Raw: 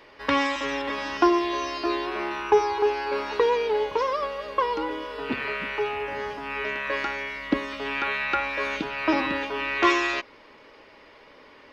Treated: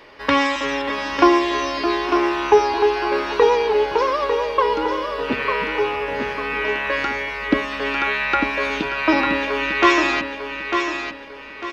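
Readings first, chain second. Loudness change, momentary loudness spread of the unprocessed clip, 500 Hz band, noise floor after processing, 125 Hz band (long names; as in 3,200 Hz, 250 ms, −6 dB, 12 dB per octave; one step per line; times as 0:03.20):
+6.0 dB, 9 LU, +6.5 dB, −37 dBFS, +7.0 dB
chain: repeating echo 899 ms, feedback 35%, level −6.5 dB
level +5.5 dB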